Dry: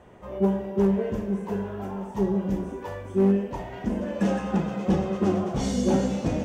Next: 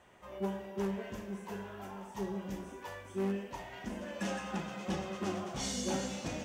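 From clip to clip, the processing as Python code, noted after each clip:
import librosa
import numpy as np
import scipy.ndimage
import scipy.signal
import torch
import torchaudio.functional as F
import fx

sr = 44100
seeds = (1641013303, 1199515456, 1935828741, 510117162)

y = fx.tilt_shelf(x, sr, db=-7.5, hz=970.0)
y = fx.notch(y, sr, hz=460.0, q=12.0)
y = y * 10.0 ** (-7.5 / 20.0)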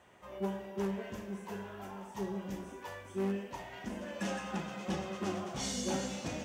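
y = scipy.signal.sosfilt(scipy.signal.butter(2, 51.0, 'highpass', fs=sr, output='sos'), x)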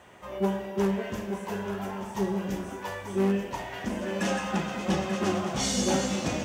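y = x + 10.0 ** (-10.0 / 20.0) * np.pad(x, (int(886 * sr / 1000.0), 0))[:len(x)]
y = y * 10.0 ** (9.0 / 20.0)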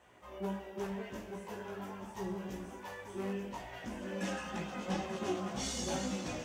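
y = fx.hum_notches(x, sr, base_hz=50, count=4)
y = fx.chorus_voices(y, sr, voices=4, hz=0.75, base_ms=18, depth_ms=2.1, mix_pct=45)
y = y * 10.0 ** (-6.5 / 20.0)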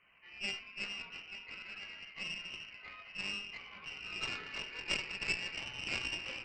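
y = fx.freq_invert(x, sr, carrier_hz=3000)
y = fx.cheby_harmonics(y, sr, harmonics=(2, 3), levels_db=(-9, -14), full_scale_db=-23.5)
y = y * 10.0 ** (3.0 / 20.0)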